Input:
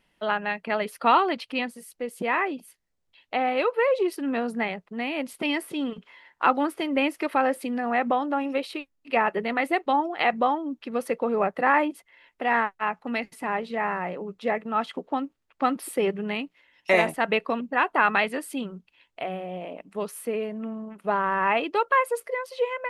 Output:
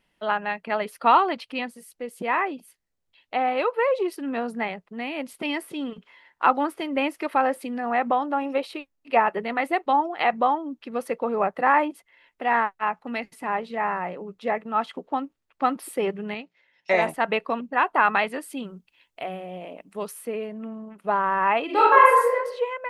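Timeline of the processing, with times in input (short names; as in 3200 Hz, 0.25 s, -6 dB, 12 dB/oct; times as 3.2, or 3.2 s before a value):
8.42–9.2 bell 700 Hz +3.5 dB 1.5 oct
16.34–17.02 speaker cabinet 110–6500 Hz, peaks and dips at 280 Hz -10 dB, 1100 Hz -7 dB, 2900 Hz -6 dB
18.64–20.13 high shelf 6000 Hz +8.5 dB
21.65–22.34 reverb throw, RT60 0.85 s, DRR -6.5 dB
whole clip: dynamic EQ 930 Hz, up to +5 dB, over -32 dBFS, Q 1.1; gain -2 dB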